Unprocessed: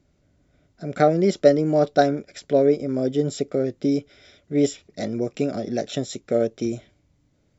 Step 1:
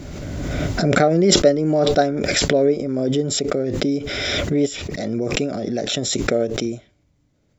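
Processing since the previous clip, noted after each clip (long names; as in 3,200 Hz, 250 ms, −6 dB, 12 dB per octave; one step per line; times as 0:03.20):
background raised ahead of every attack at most 21 dB per second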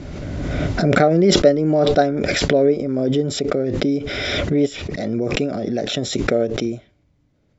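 high-frequency loss of the air 100 metres
level +1.5 dB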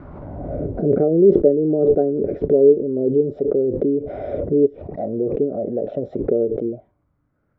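envelope-controlled low-pass 420–1,400 Hz down, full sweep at −16.5 dBFS
level −6.5 dB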